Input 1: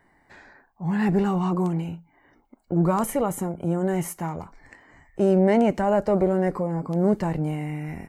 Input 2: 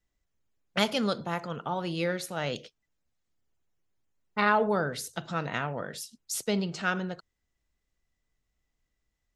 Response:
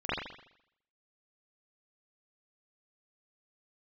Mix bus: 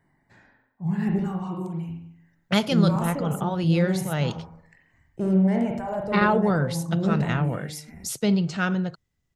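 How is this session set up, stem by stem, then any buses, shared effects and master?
−11.0 dB, 0.00 s, send −9.5 dB, reverb reduction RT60 1.6 s; high-shelf EQ 4,700 Hz +4.5 dB; hard clipping −14 dBFS, distortion −28 dB
+1.5 dB, 1.75 s, no send, no processing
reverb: on, RT60 0.75 s, pre-delay 42 ms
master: parametric band 130 Hz +12 dB 1.5 octaves

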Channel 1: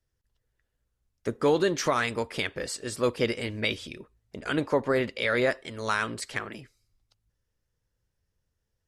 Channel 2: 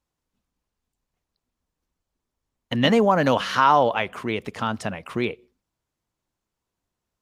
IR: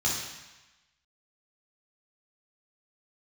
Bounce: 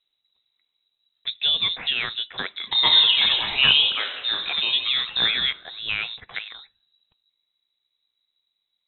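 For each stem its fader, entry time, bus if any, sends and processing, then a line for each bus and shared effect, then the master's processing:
+0.5 dB, 0.00 s, no send, no processing
+0.5 dB, 0.00 s, send −12.5 dB, reverb reduction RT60 1.2 s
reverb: on, RT60 1.1 s, pre-delay 3 ms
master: voice inversion scrambler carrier 3,900 Hz

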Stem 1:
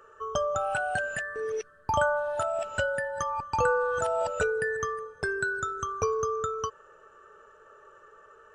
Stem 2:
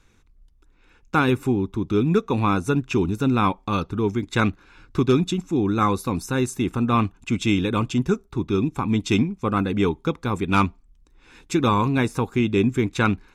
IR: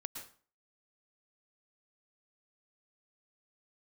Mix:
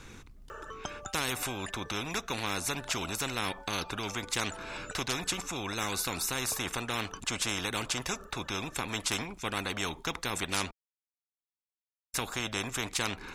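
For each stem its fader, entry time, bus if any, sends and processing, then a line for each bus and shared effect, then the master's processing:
−1.0 dB, 0.50 s, no send, reverb reduction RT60 1.7 s; downward compressor 4 to 1, threshold −42 dBFS, peak gain reduction 17 dB; automatic ducking −13 dB, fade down 1.85 s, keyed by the second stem
−6.0 dB, 0.00 s, muted 0:10.71–0:12.14, no send, no processing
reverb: not used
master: every bin compressed towards the loudest bin 4 to 1

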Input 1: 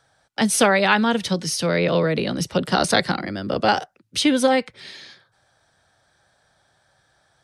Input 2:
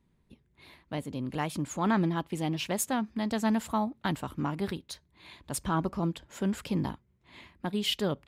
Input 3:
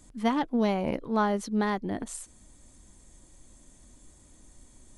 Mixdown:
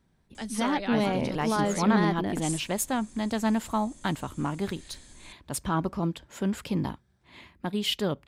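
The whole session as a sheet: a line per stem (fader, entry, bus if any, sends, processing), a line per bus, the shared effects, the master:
−17.0 dB, 0.00 s, muted 0:01.94–0:04.66, no send, no processing
+1.5 dB, 0.00 s, no send, no processing
+2.0 dB, 0.35 s, no send, parametric band 4,300 Hz +4.5 dB 2.3 octaves; brickwall limiter −21 dBFS, peak gain reduction 7 dB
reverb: not used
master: no processing

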